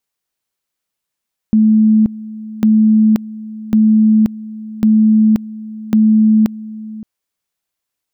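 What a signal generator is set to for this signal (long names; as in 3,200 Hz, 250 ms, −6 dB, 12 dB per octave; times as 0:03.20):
tone at two levels in turn 217 Hz −6.5 dBFS, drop 18.5 dB, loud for 0.53 s, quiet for 0.57 s, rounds 5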